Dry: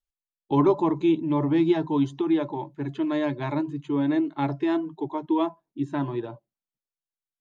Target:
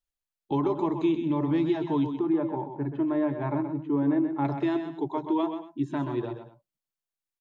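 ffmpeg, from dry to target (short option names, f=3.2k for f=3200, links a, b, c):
-filter_complex "[0:a]asettb=1/sr,asplit=3[a][b][c];[a]atrim=end=2.064[d];[b]atrim=start=2.06:end=4.45,asetpts=PTS-STARTPTS,afade=t=in:d=0.004:c=qsin,afade=t=out:st=2.386:d=0.004:c=qsin,lowpass=1.4k[e];[c]atrim=start=4.446[f];[d][e]acrossfade=d=0.004:c1=hsin:c2=qsin[g];[g][f]acrossfade=d=0.004:c1=qsin:c2=hsin,alimiter=limit=-18dB:level=0:latency=1:release=237,aecho=1:1:129|230:0.398|0.126"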